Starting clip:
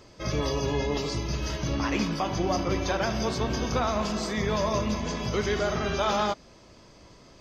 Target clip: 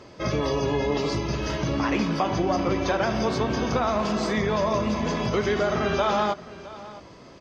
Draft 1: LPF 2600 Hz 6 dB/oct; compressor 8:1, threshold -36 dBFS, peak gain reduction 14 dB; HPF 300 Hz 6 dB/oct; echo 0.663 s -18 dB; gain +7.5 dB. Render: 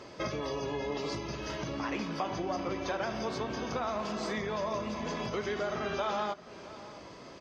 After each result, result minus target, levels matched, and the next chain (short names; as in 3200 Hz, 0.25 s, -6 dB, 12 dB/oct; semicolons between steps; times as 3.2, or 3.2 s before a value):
compressor: peak gain reduction +8.5 dB; 125 Hz band -3.5 dB
LPF 2600 Hz 6 dB/oct; compressor 8:1, threshold -26 dBFS, peak gain reduction 5 dB; HPF 300 Hz 6 dB/oct; echo 0.663 s -18 dB; gain +7.5 dB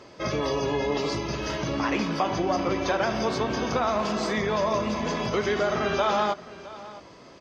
125 Hz band -3.5 dB
LPF 2600 Hz 6 dB/oct; compressor 8:1, threshold -26 dBFS, peak gain reduction 5 dB; HPF 130 Hz 6 dB/oct; echo 0.663 s -18 dB; gain +7.5 dB